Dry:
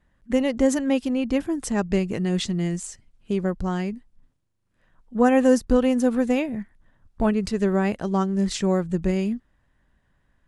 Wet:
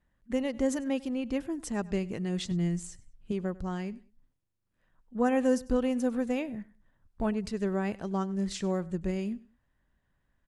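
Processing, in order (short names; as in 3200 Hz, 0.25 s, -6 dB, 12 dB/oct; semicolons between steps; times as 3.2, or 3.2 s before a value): 2.51–3.32 low shelf 150 Hz +11.5 dB; feedback echo 98 ms, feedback 26%, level -21.5 dB; gain -8.5 dB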